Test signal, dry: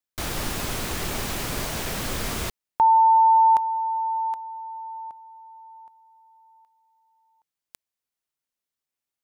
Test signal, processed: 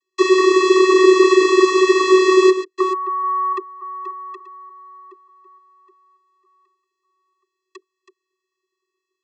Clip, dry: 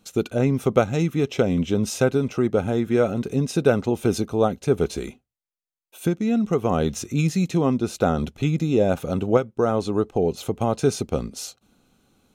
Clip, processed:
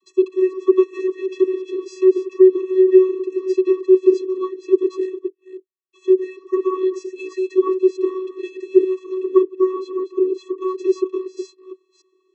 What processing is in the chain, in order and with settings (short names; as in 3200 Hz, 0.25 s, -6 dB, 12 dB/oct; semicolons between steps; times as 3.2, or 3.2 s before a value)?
reverse delay 0.293 s, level -11.5 dB; HPF 260 Hz; vocoder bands 32, square 374 Hz; air absorption 53 m; maximiser +8 dB; gain -1 dB